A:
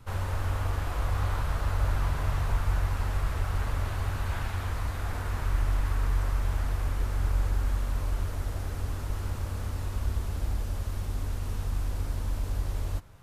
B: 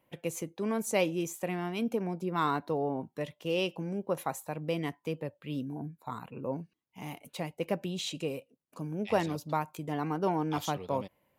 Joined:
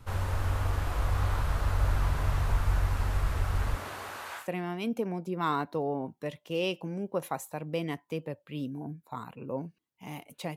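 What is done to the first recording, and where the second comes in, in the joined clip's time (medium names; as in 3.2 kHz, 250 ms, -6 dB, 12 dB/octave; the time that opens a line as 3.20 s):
A
3.75–4.49 s: high-pass 190 Hz -> 910 Hz
4.42 s: go over to B from 1.37 s, crossfade 0.14 s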